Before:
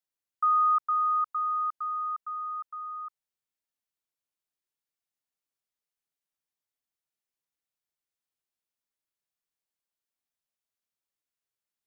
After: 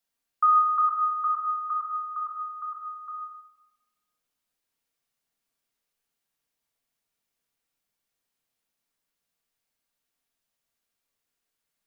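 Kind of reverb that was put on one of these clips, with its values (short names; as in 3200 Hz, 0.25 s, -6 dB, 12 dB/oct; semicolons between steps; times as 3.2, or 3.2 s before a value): shoebox room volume 840 m³, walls mixed, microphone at 1.7 m; gain +5.5 dB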